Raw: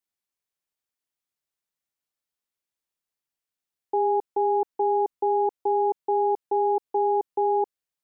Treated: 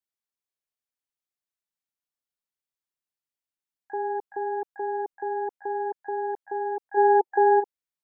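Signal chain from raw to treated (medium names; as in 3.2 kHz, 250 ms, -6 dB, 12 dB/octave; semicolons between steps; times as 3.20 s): time-frequency box 6.97–7.60 s, 350–890 Hz +11 dB; harmony voices +12 st -15 dB; trim -6.5 dB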